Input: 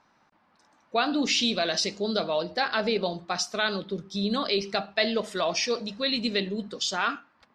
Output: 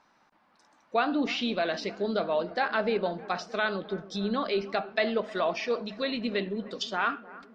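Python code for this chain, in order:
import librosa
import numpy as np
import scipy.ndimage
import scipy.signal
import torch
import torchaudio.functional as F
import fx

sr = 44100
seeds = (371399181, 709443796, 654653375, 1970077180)

y = fx.env_lowpass_down(x, sr, base_hz=2300.0, full_db=-25.5)
y = fx.peak_eq(y, sr, hz=100.0, db=-6.5, octaves=1.7)
y = fx.echo_bbd(y, sr, ms=309, stages=4096, feedback_pct=71, wet_db=-19.5)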